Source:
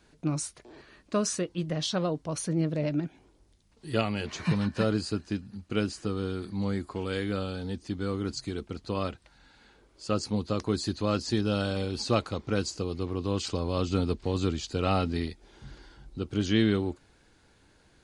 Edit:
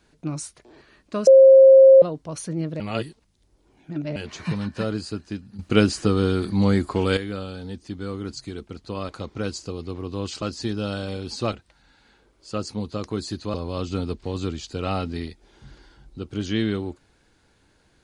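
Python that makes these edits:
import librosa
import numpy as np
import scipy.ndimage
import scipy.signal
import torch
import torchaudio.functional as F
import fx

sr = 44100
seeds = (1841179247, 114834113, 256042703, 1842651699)

y = fx.edit(x, sr, fx.bleep(start_s=1.27, length_s=0.75, hz=534.0, db=-6.5),
    fx.reverse_span(start_s=2.8, length_s=1.36),
    fx.clip_gain(start_s=5.59, length_s=1.58, db=11.0),
    fx.swap(start_s=9.09, length_s=2.01, other_s=12.21, other_length_s=1.33), tone=tone)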